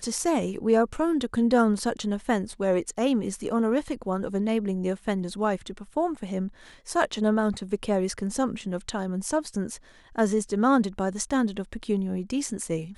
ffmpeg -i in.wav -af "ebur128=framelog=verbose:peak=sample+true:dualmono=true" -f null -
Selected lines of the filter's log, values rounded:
Integrated loudness:
  I:         -23.8 LUFS
  Threshold: -33.8 LUFS
Loudness range:
  LRA:         3.3 LU
  Threshold: -44.1 LUFS
  LRA low:   -25.4 LUFS
  LRA high:  -22.1 LUFS
Sample peak:
  Peak:       -7.4 dBFS
True peak:
  Peak:       -7.3 dBFS